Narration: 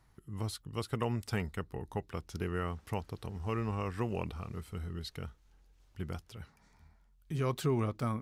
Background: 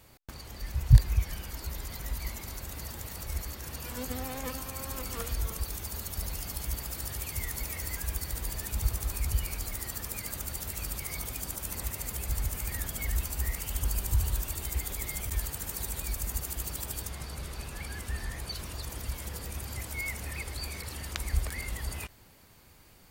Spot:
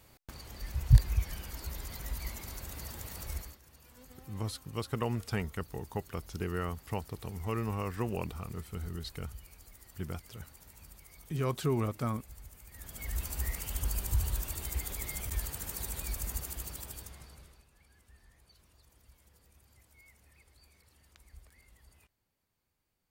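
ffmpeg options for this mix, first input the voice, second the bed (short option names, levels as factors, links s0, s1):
-filter_complex "[0:a]adelay=4000,volume=1.06[s0];[1:a]volume=4.47,afade=t=out:st=3.31:d=0.28:silence=0.158489,afade=t=in:st=12.71:d=0.62:silence=0.158489,afade=t=out:st=16.28:d=1.37:silence=0.0749894[s1];[s0][s1]amix=inputs=2:normalize=0"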